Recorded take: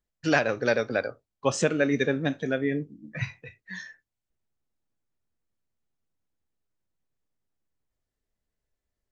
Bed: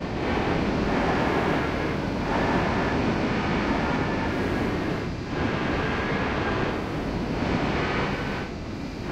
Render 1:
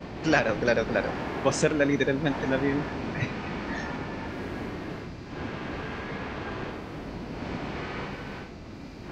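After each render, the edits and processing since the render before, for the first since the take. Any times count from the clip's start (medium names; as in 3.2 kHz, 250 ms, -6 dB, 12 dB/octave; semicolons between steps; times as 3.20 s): add bed -9 dB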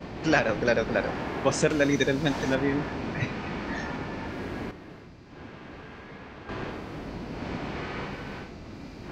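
1.70–2.55 s: tone controls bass +1 dB, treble +12 dB; 4.71–6.49 s: gain -9 dB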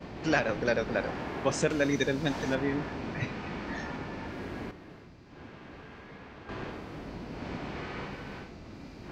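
trim -4 dB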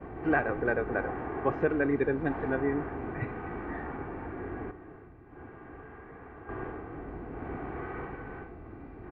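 low-pass 1.8 kHz 24 dB/octave; comb 2.6 ms, depth 50%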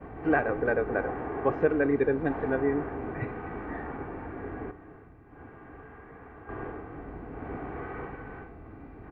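band-stop 360 Hz, Q 12; dynamic bell 450 Hz, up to +4 dB, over -41 dBFS, Q 1.1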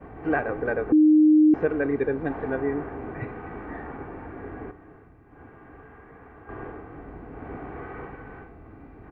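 0.92–1.54 s: bleep 307 Hz -12.5 dBFS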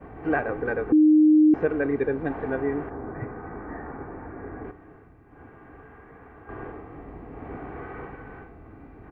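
0.57–1.35 s: band-stop 620 Hz, Q 5.4; 2.89–4.63 s: low-pass 1.7 kHz -> 2.2 kHz 24 dB/octave; 6.72–7.51 s: band-stop 1.5 kHz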